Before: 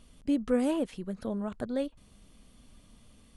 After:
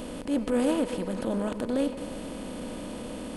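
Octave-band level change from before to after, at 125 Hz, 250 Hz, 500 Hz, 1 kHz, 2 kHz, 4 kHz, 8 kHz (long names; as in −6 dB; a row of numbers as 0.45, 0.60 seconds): +5.0, +3.0, +4.0, +6.0, +6.0, +7.5, +9.5 decibels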